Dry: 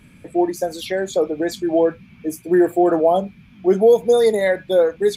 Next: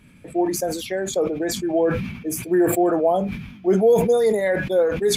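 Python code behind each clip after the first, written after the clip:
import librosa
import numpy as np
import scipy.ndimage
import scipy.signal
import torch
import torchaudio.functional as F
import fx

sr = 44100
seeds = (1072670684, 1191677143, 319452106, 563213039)

y = fx.dynamic_eq(x, sr, hz=4000.0, q=2.3, threshold_db=-46.0, ratio=4.0, max_db=-6)
y = fx.sustainer(y, sr, db_per_s=59.0)
y = y * librosa.db_to_amplitude(-3.5)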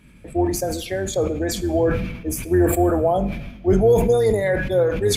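y = fx.octave_divider(x, sr, octaves=2, level_db=-1.0)
y = fx.rev_plate(y, sr, seeds[0], rt60_s=0.93, hf_ratio=0.9, predelay_ms=0, drr_db=14.5)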